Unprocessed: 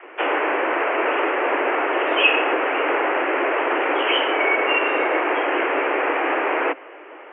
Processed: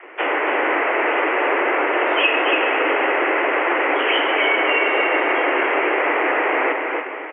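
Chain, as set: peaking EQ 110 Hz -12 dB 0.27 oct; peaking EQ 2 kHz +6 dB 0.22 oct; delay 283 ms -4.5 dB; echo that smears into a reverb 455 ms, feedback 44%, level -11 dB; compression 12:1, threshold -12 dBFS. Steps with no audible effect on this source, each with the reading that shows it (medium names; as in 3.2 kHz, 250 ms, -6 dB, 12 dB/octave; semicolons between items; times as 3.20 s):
peaking EQ 110 Hz: input has nothing below 230 Hz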